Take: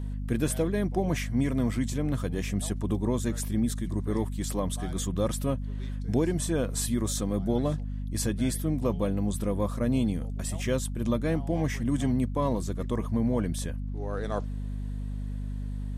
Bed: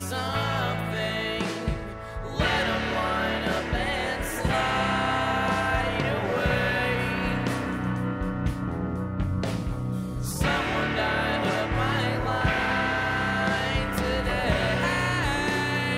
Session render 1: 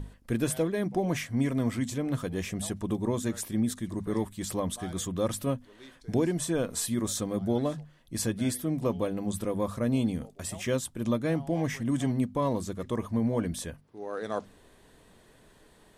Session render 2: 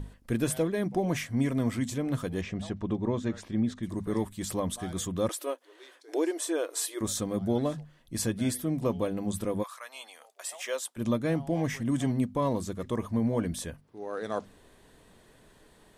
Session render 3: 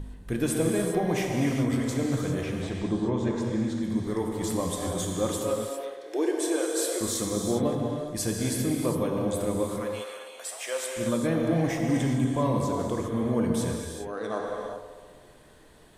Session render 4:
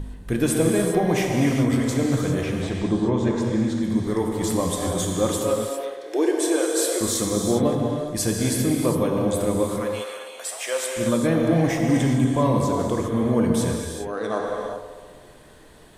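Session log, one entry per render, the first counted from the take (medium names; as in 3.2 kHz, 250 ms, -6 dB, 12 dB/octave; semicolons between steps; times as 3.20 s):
hum notches 50/100/150/200/250 Hz
2.41–3.83 s: distance through air 150 m; 5.29–7.01 s: brick-wall FIR high-pass 290 Hz; 9.62–10.96 s: high-pass 1.1 kHz -> 430 Hz 24 dB/octave
feedback echo behind a band-pass 65 ms, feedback 79%, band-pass 670 Hz, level -11 dB; gated-style reverb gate 430 ms flat, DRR 0 dB
trim +5.5 dB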